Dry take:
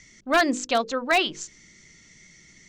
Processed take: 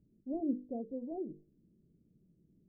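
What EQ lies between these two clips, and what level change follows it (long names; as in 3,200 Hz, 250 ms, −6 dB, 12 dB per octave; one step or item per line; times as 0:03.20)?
Gaussian smoothing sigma 23 samples
low-shelf EQ 70 Hz −9.5 dB
low-shelf EQ 190 Hz −6 dB
−1.5 dB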